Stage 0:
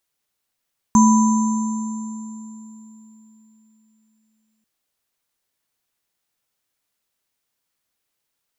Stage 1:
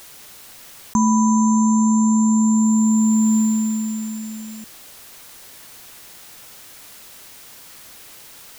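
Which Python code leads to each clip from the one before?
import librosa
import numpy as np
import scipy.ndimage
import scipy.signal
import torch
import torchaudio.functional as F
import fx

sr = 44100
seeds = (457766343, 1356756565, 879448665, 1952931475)

y = fx.env_flatten(x, sr, amount_pct=100)
y = y * librosa.db_to_amplitude(-4.5)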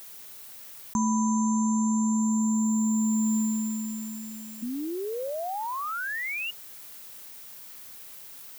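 y = fx.high_shelf(x, sr, hz=12000.0, db=11.0)
y = fx.spec_paint(y, sr, seeds[0], shape='rise', start_s=4.62, length_s=1.89, low_hz=230.0, high_hz=2900.0, level_db=-23.0)
y = y * librosa.db_to_amplitude(-9.0)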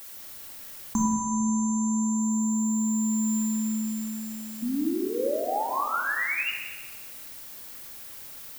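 y = fx.room_shoebox(x, sr, seeds[1], volume_m3=1900.0, walls='mixed', distance_m=2.3)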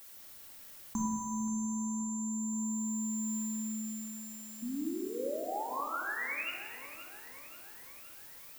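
y = fx.echo_feedback(x, sr, ms=527, feedback_pct=56, wet_db=-14.0)
y = y * librosa.db_to_amplitude(-9.0)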